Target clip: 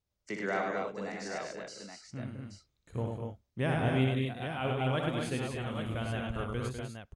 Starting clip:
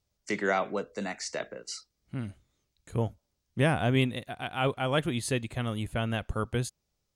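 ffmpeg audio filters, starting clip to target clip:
-af "highshelf=f=5.2k:g=-8,aecho=1:1:61|99|200|245|275|828:0.501|0.668|0.422|0.562|0.237|0.422,volume=-7dB"

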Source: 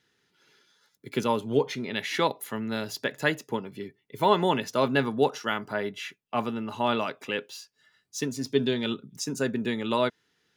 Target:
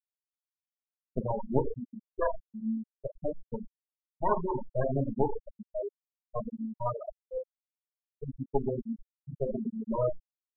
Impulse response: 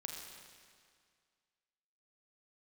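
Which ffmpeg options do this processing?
-filter_complex "[0:a]equalizer=f=125:t=o:w=0.33:g=5,equalizer=f=315:t=o:w=0.33:g=-9,equalizer=f=800:t=o:w=0.33:g=-4,equalizer=f=1.6k:t=o:w=0.33:g=-11,equalizer=f=5k:t=o:w=0.33:g=5,equalizer=f=10k:t=o:w=0.33:g=-10,aeval=exprs='0.398*(cos(1*acos(clip(val(0)/0.398,-1,1)))-cos(1*PI/2))+0.141*(cos(3*acos(clip(val(0)/0.398,-1,1)))-cos(3*PI/2))+0.0562*(cos(4*acos(clip(val(0)/0.398,-1,1)))-cos(4*PI/2))+0.0355*(cos(5*acos(clip(val(0)/0.398,-1,1)))-cos(5*PI/2))+0.0112*(cos(8*acos(clip(val(0)/0.398,-1,1)))-cos(8*PI/2))':c=same,acrossover=split=530|2400[a][b][c];[c]acrusher=bits=4:dc=4:mix=0:aa=0.000001[d];[a][b][d]amix=inputs=3:normalize=0,aecho=1:1:37|58:0.266|0.211,asplit=2[e][f];[f]acompressor=threshold=-30dB:ratio=12,volume=1dB[g];[e][g]amix=inputs=2:normalize=0[h];[1:a]atrim=start_sample=2205,atrim=end_sample=6174[i];[h][i]afir=irnorm=-1:irlink=0,afftfilt=real='re*gte(hypot(re,im),0.112)':imag='im*gte(hypot(re,im),0.112)':win_size=1024:overlap=0.75,volume=4.5dB"

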